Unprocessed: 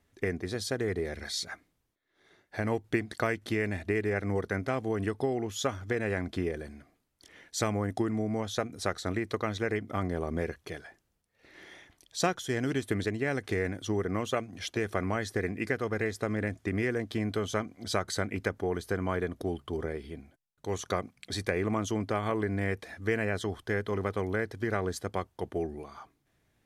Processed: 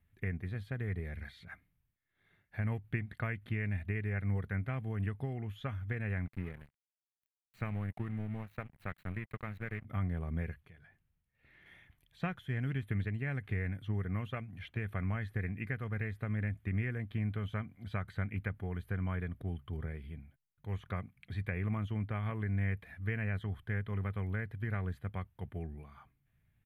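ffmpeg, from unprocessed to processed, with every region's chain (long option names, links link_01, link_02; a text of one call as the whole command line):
ffmpeg -i in.wav -filter_complex "[0:a]asettb=1/sr,asplit=3[link_01][link_02][link_03];[link_01]atrim=end=6.264[link_04];[link_02]atrim=start=6.26:end=9.85,asetpts=PTS-STARTPTS,afade=type=in:duration=0.004:curve=qsin,afade=type=out:start_time=3.586:duration=0.004:curve=qsin,asuperstop=centerf=3200:order=12:qfactor=2.7,equalizer=frequency=62:width=2.8:gain=-14,aeval=exprs='sgn(val(0))*max(abs(val(0))-0.00944,0)':channel_layout=same[link_05];[link_03]atrim=start=9.846[link_06];[link_04][link_05]acrossfade=duration=0.004:curve1=hsin:curve2=qsin[link_07];[link_07][link_06]acrossfade=duration=0.004:curve1=qsin:curve2=hsin,asettb=1/sr,asplit=3[link_08][link_09][link_10];[link_08]atrim=end=10.604[link_11];[link_09]atrim=start=10.6:end=11.66,asetpts=PTS-STARTPTS,afade=type=in:duration=0.004:curve=qsin,afade=type=out:start_time=1.056:duration=0.004:curve=qsin,highshelf=frequency=10000:gain=-9,bandreject=frequency=50:width_type=h:width=6,bandreject=frequency=100:width_type=h:width=6,bandreject=frequency=150:width_type=h:width=6,bandreject=frequency=200:width_type=h:width=6,acompressor=threshold=-51dB:ratio=3:attack=3.2:release=140:knee=1:detection=peak[link_12];[link_10]atrim=start=11.656[link_13];[link_11][link_12]acrossfade=duration=0.004:curve1=hsin:curve2=qsin[link_14];[link_14][link_13]acrossfade=duration=0.004:curve1=qsin:curve2=hsin,bandreject=frequency=2000:width=29,acrossover=split=3600[link_15][link_16];[link_16]acompressor=threshold=-56dB:ratio=4:attack=1:release=60[link_17];[link_15][link_17]amix=inputs=2:normalize=0,firequalizer=gain_entry='entry(140,0);entry(320,-18);entry(2100,-6);entry(3100,-11);entry(5400,-28);entry(12000,-6)':delay=0.05:min_phase=1,volume=2dB" out.wav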